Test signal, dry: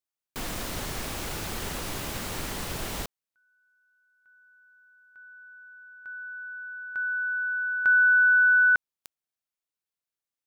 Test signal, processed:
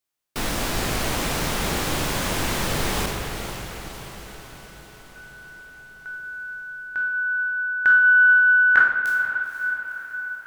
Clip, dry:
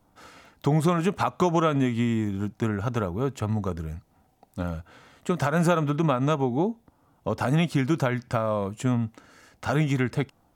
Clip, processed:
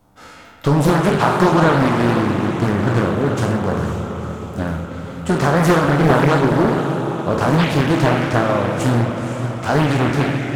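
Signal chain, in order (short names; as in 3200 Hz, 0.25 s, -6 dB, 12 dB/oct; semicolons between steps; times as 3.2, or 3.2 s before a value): spectral trails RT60 0.64 s; on a send: diffused feedback echo 0.493 s, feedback 59%, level -9 dB; on the sum: spring tank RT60 2.8 s, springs 42/49/58 ms, chirp 50 ms, DRR 4.5 dB; Doppler distortion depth 0.96 ms; gain +6 dB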